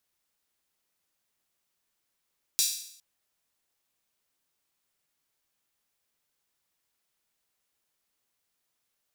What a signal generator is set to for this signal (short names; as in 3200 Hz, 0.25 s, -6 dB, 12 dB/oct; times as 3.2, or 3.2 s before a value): open hi-hat length 0.41 s, high-pass 4600 Hz, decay 0.67 s